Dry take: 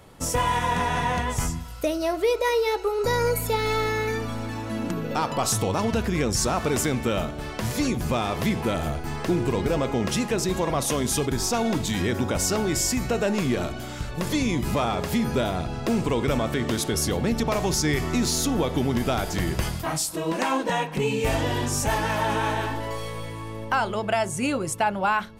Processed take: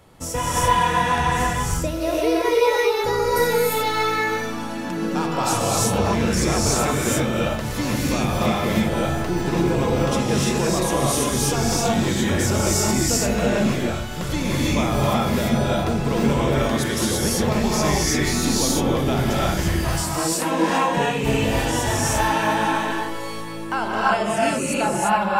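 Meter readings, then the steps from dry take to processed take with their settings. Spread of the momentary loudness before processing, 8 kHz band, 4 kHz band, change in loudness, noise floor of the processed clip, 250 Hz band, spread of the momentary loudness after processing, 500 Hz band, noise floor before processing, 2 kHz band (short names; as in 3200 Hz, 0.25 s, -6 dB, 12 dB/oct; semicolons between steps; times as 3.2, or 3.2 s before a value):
6 LU, +4.5 dB, +4.5 dB, +4.5 dB, -28 dBFS, +4.0 dB, 5 LU, +3.5 dB, -34 dBFS, +4.5 dB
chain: non-linear reverb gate 0.37 s rising, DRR -6 dB; gain -2.5 dB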